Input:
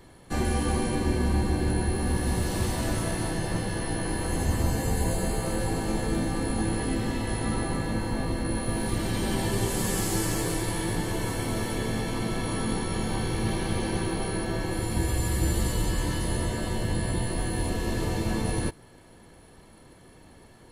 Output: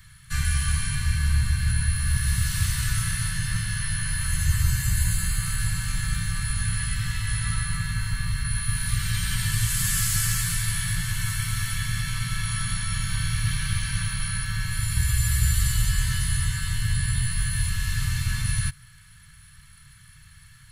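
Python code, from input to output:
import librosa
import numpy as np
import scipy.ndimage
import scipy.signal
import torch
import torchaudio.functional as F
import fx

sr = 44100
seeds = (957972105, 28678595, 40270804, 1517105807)

y = scipy.signal.sosfilt(scipy.signal.ellip(3, 1.0, 50, [140.0, 1400.0], 'bandstop', fs=sr, output='sos'), x)
y = fx.high_shelf(y, sr, hz=11000.0, db=4.5)
y = y * 10.0 ** (5.5 / 20.0)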